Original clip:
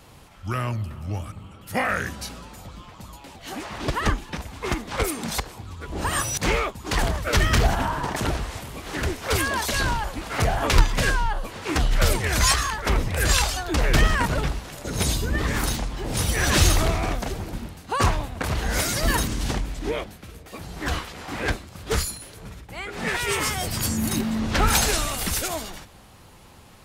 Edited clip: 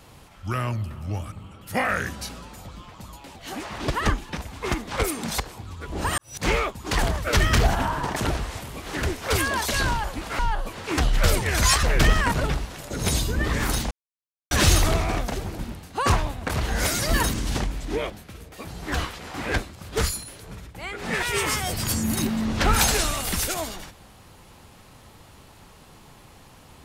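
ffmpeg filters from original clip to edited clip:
-filter_complex "[0:a]asplit=6[s0][s1][s2][s3][s4][s5];[s0]atrim=end=6.18,asetpts=PTS-STARTPTS,afade=t=out:st=6.176:d=0.004:c=hsin[s6];[s1]atrim=start=6.18:end=10.392,asetpts=PTS-STARTPTS,afade=t=in:d=0.3:c=qua[s7];[s2]atrim=start=11.168:end=12.612[s8];[s3]atrim=start=13.768:end=15.85,asetpts=PTS-STARTPTS,afade=t=out:st=2.078:d=0.004:c=hsin[s9];[s4]atrim=start=15.85:end=16.45,asetpts=PTS-STARTPTS,volume=0[s10];[s5]atrim=start=16.45,asetpts=PTS-STARTPTS,afade=t=in:d=0.004:c=hsin[s11];[s6][s7]concat=n=2:v=0:a=1[s12];[s12][s8]acrossfade=d=0.004:c1=hsin:c2=hsin[s13];[s9][s10][s11]concat=n=3:v=0:a=1[s14];[s13][s14]acrossfade=d=0.004:c1=hsin:c2=hsin"

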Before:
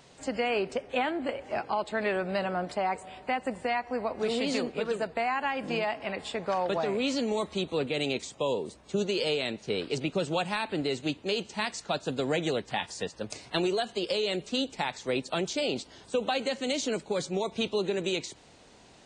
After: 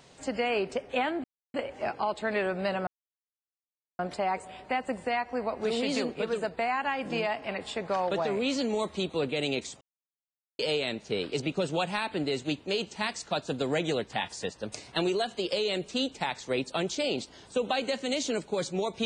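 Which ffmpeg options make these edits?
-filter_complex "[0:a]asplit=5[s0][s1][s2][s3][s4];[s0]atrim=end=1.24,asetpts=PTS-STARTPTS,afade=t=out:st=1.236:d=0.004:c=hsin,apad=pad_dur=0.3[s5];[s1]atrim=start=1.24:end=2.57,asetpts=PTS-STARTPTS,afade=t=in:d=0.004:c=hsin,afade=t=out:st=1.326:d=0.004:c=hsin,apad=pad_dur=1.12[s6];[s2]atrim=start=2.57:end=8.39,asetpts=PTS-STARTPTS,afade=t=in:d=0.004:c=hsin,afade=t=out:st=5.816:d=0.004:c=hsin[s7];[s3]atrim=start=8.39:end=9.17,asetpts=PTS-STARTPTS,volume=0[s8];[s4]atrim=start=9.17,asetpts=PTS-STARTPTS,afade=t=in:d=0.004:c=hsin[s9];[s5][s6][s7][s8][s9]concat=n=5:v=0:a=1"

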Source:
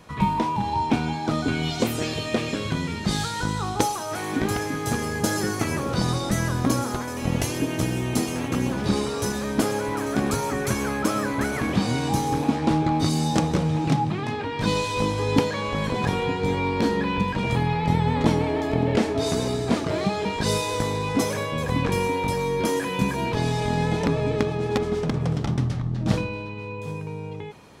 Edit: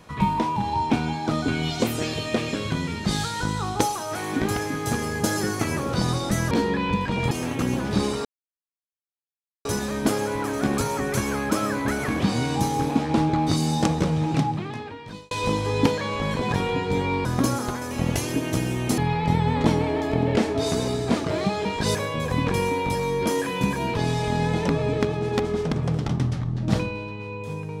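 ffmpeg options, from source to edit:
-filter_complex "[0:a]asplit=8[s0][s1][s2][s3][s4][s5][s6][s7];[s0]atrim=end=6.512[s8];[s1]atrim=start=16.778:end=17.582[s9];[s2]atrim=start=8.238:end=9.18,asetpts=PTS-STARTPTS,afade=t=out:st=0.938:d=0.004:c=hsin,apad=pad_dur=1.4[s10];[s3]atrim=start=9.18:end=14.84,asetpts=PTS-STARTPTS,afade=t=in:d=0.004:c=hsin,afade=t=out:st=4.66:d=1[s11];[s4]atrim=start=14.84:end=16.782,asetpts=PTS-STARTPTS,afade=t=in:d=0.004:c=hsin[s12];[s5]atrim=start=6.508:end=8.242[s13];[s6]atrim=start=17.578:end=20.552[s14];[s7]atrim=start=21.328[s15];[s8][s9]acrossfade=d=0.004:c1=hsin:c2=hsin[s16];[s10][s11][s12]concat=n=3:v=0:a=1[s17];[s16][s17]acrossfade=d=0.004:c1=hsin:c2=hsin[s18];[s18][s13]acrossfade=d=0.004:c1=hsin:c2=hsin[s19];[s19][s14]acrossfade=d=0.004:c1=hsin:c2=hsin[s20];[s20][s15]acrossfade=d=0.004:c1=hsin:c2=hsin"

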